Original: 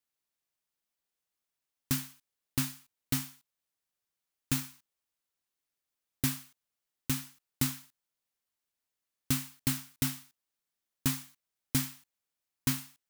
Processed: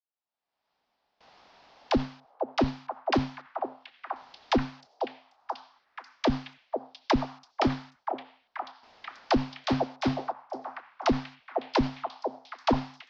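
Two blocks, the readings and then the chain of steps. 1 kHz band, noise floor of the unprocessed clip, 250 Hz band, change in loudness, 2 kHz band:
+20.0 dB, below −85 dBFS, +8.0 dB, +2.5 dB, +6.5 dB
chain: phase distortion by the signal itself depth 0.53 ms
camcorder AGC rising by 42 dB per second
parametric band 240 Hz +6 dB 0.38 octaves
tube saturation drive 13 dB, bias 0.6
Butterworth low-pass 5,200 Hz 48 dB per octave
all-pass dispersion lows, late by 61 ms, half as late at 410 Hz
brickwall limiter −22.5 dBFS, peak gain reduction 9.5 dB
noise gate with hold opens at −55 dBFS
parametric band 780 Hz +14 dB 1.2 octaves
echo through a band-pass that steps 486 ms, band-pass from 590 Hz, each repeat 0.7 octaves, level −2 dB
level +4.5 dB

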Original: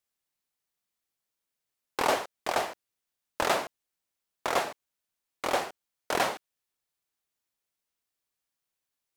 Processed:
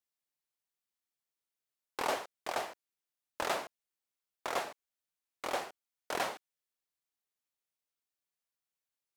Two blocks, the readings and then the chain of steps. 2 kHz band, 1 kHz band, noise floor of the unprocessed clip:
−7.0 dB, −7.5 dB, below −85 dBFS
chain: low-shelf EQ 230 Hz −4 dB
level −7 dB

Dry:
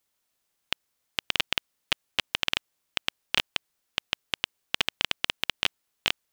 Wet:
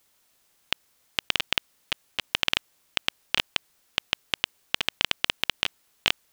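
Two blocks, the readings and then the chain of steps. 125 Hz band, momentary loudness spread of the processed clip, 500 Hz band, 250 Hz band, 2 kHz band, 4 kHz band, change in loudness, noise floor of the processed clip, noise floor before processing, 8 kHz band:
+2.0 dB, 7 LU, +1.5 dB, +1.5 dB, +1.5 dB, +1.5 dB, +1.5 dB, −69 dBFS, −78 dBFS, +1.5 dB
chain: compressor whose output falls as the input rises −31 dBFS, ratio −1
level +6.5 dB

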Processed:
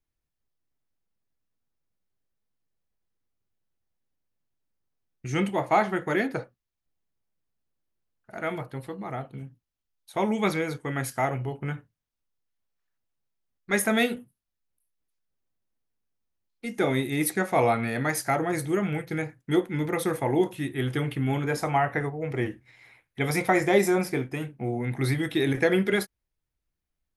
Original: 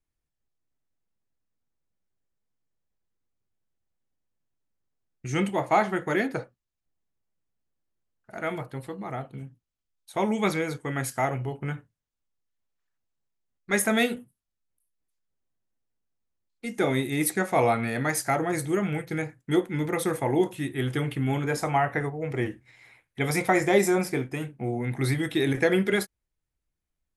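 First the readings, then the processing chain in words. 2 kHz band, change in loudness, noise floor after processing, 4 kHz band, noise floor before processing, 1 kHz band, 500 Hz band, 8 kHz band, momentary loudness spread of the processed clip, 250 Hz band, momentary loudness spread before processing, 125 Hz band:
0.0 dB, 0.0 dB, −84 dBFS, −0.5 dB, −84 dBFS, 0.0 dB, 0.0 dB, −2.0 dB, 13 LU, 0.0 dB, 13 LU, 0.0 dB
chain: parametric band 7,700 Hz −5 dB 0.46 octaves

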